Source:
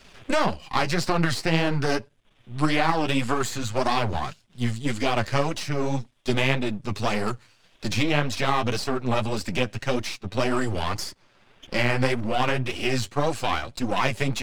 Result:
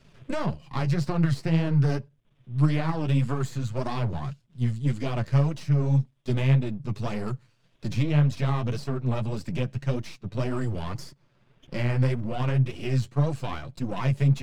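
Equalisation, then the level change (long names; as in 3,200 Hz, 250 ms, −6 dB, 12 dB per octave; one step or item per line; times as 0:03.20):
tilt shelving filter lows +4 dB, about 850 Hz
parametric band 140 Hz +14.5 dB 0.46 octaves
notch filter 780 Hz, Q 14
−8.5 dB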